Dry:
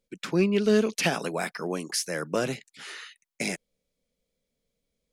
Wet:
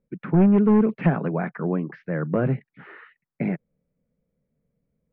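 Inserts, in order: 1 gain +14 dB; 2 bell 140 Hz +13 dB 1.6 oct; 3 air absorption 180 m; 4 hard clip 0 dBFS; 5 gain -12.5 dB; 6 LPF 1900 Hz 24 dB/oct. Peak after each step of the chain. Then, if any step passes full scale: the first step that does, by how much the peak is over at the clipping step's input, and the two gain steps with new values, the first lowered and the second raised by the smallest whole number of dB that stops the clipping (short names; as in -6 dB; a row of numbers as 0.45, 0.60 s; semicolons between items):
+3.5, +7.5, +7.0, 0.0, -12.5, -11.5 dBFS; step 1, 7.0 dB; step 1 +7 dB, step 5 -5.5 dB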